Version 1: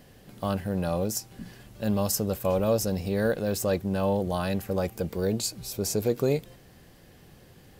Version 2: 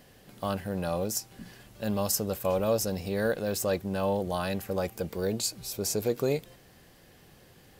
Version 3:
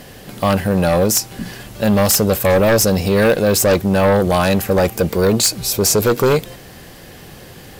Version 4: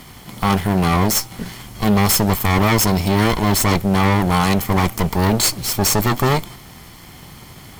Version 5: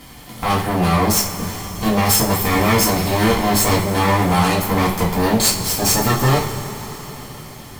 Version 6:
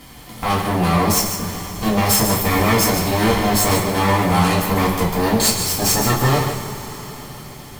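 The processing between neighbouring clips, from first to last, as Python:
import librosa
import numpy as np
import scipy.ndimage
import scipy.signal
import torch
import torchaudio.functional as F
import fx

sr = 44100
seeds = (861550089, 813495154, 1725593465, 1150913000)

y1 = fx.low_shelf(x, sr, hz=370.0, db=-5.5)
y2 = fx.fold_sine(y1, sr, drive_db=10, ceiling_db=-13.0)
y2 = y2 * librosa.db_to_amplitude(4.0)
y3 = fx.lower_of_two(y2, sr, delay_ms=0.92)
y4 = fx.rev_double_slope(y3, sr, seeds[0], early_s=0.3, late_s=4.8, knee_db=-20, drr_db=-5.0)
y4 = y4 * librosa.db_to_amplitude(-5.0)
y5 = y4 + 10.0 ** (-8.0 / 20.0) * np.pad(y4, (int(147 * sr / 1000.0), 0))[:len(y4)]
y5 = y5 * librosa.db_to_amplitude(-1.0)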